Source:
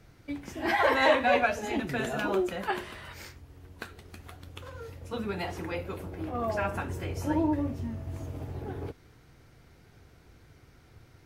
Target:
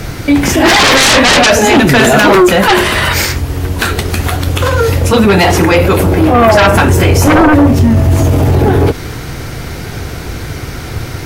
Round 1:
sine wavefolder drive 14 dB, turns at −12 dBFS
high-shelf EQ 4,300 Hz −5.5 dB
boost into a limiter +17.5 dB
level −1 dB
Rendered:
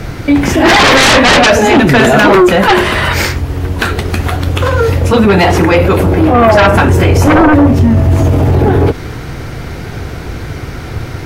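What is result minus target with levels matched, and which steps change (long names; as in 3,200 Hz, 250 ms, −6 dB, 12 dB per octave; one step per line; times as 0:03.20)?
8,000 Hz band −5.0 dB
change: high-shelf EQ 4,300 Hz +4 dB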